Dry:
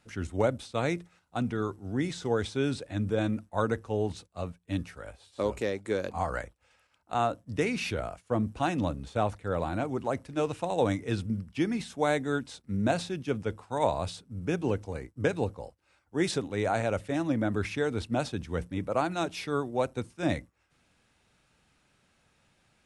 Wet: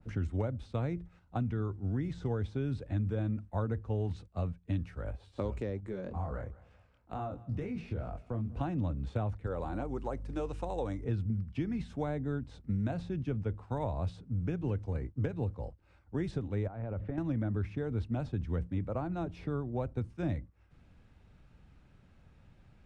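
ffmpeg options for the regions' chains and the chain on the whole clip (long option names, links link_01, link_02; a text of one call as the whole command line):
ffmpeg -i in.wav -filter_complex "[0:a]asettb=1/sr,asplit=3[link_01][link_02][link_03];[link_01]atrim=end=5.804[link_04];[link_02]atrim=start=5.8:end=8.61,asetpts=PTS-STARTPTS,afade=type=in:duration=0.004:curve=qsin,afade=type=out:start_time=2.806:duration=0.004:curve=qsin,flanger=delay=19.5:depth=7.4:speed=2.1,acompressor=threshold=-41dB:ratio=2:attack=3.2:release=140:knee=1:detection=peak,aecho=1:1:192|384|576:0.0708|0.0333|0.0156,atrim=end_sample=123921[link_05];[link_03]atrim=start=8.606[link_06];[link_04][link_05]acrossfade=duration=0.004:curve1=hsin:curve2=qsin[link_07];[link_07][link_06]acrossfade=duration=0.004:curve1=qsin:curve2=hsin,asettb=1/sr,asplit=3[link_08][link_09][link_10];[link_08]atrim=end=9.464[link_11];[link_09]atrim=start=9.46:end=11.04,asetpts=PTS-STARTPTS,afade=type=in:duration=0.004:curve=qsin,afade=type=out:start_time=1.576:duration=0.004:curve=qsin,bass=frequency=250:gain=-14,treble=frequency=4000:gain=10,bandreject=frequency=650:width=8.9,aeval=exprs='val(0)+0.00224*(sin(2*PI*50*n/s)+sin(2*PI*2*50*n/s)/2+sin(2*PI*3*50*n/s)/3+sin(2*PI*4*50*n/s)/4+sin(2*PI*5*50*n/s)/5)':channel_layout=same[link_12];[link_10]atrim=start=11.036[link_13];[link_11][link_12]acrossfade=duration=0.004:curve1=hsin:curve2=qsin[link_14];[link_14][link_13]acrossfade=duration=0.004:curve1=qsin:curve2=hsin,asettb=1/sr,asplit=3[link_15][link_16][link_17];[link_15]atrim=end=16.674[link_18];[link_16]atrim=start=16.67:end=17.18,asetpts=PTS-STARTPTS,afade=type=in:duration=0.004:curve=qsin,afade=type=out:start_time=0.506:duration=0.004:curve=qsin,acompressor=threshold=-36dB:ratio=8:attack=3.2:release=140:knee=1:detection=peak,lowpass=2100[link_19];[link_17]atrim=start=17.176[link_20];[link_18][link_19]acrossfade=duration=0.004:curve1=hsin:curve2=qsin[link_21];[link_21][link_20]acrossfade=duration=0.004:curve1=qsin:curve2=hsin,aemphasis=mode=reproduction:type=riaa,acrossover=split=96|1300[link_22][link_23][link_24];[link_22]acompressor=threshold=-40dB:ratio=4[link_25];[link_23]acompressor=threshold=-35dB:ratio=4[link_26];[link_24]acompressor=threshold=-52dB:ratio=4[link_27];[link_25][link_26][link_27]amix=inputs=3:normalize=0,adynamicequalizer=threshold=0.002:dfrequency=1700:dqfactor=0.7:tfrequency=1700:tqfactor=0.7:attack=5:release=100:ratio=0.375:range=2.5:mode=cutabove:tftype=highshelf" out.wav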